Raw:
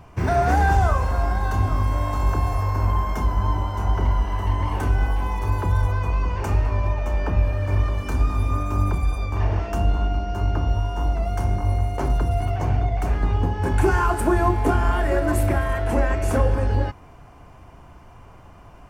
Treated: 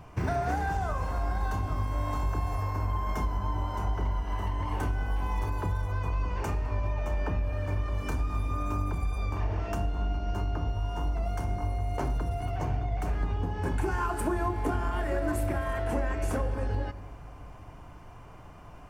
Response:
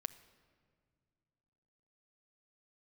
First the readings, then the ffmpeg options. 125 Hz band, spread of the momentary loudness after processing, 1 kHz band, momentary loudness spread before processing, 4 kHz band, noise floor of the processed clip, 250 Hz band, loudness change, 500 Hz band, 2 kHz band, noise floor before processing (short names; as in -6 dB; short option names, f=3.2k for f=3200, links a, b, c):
-9.0 dB, 3 LU, -8.5 dB, 5 LU, -7.5 dB, -47 dBFS, -8.0 dB, -9.0 dB, -8.5 dB, -8.5 dB, -46 dBFS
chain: -filter_complex "[0:a]acompressor=threshold=-24dB:ratio=4[a];[1:a]atrim=start_sample=2205[b];[a][b]afir=irnorm=-1:irlink=0"